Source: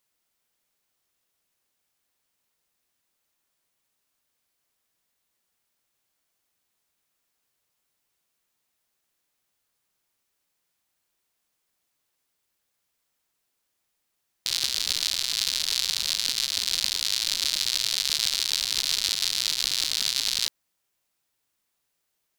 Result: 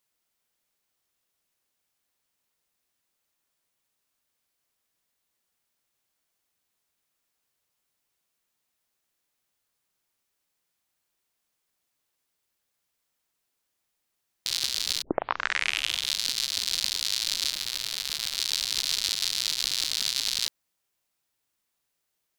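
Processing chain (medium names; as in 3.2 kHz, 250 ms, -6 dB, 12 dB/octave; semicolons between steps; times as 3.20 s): 15.02 s: tape start 1.17 s; 17.51–18.38 s: peaking EQ 5.9 kHz -5 dB 2.2 oct; trim -2 dB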